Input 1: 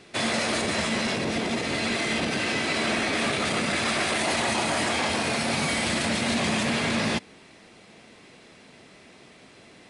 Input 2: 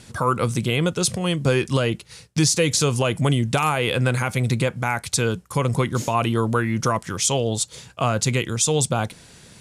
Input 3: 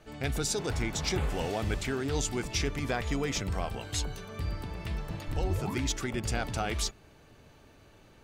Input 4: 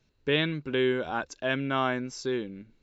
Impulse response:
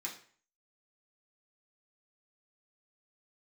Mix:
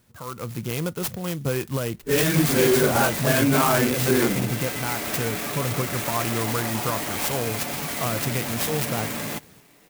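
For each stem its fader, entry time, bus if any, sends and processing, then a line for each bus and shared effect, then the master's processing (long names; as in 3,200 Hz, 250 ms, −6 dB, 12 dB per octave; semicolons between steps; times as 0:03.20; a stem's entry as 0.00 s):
−15.5 dB, 2.20 s, no send, high-shelf EQ 4,900 Hz +7.5 dB; comb filter 6.9 ms, depth 38%
−16.0 dB, 0.00 s, no send, no processing
muted
+3.0 dB, 1.85 s, no send, random phases in long frames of 100 ms; brickwall limiter −25 dBFS, peak gain reduction 10.5 dB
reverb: not used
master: automatic gain control gain up to 10 dB; converter with an unsteady clock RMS 0.066 ms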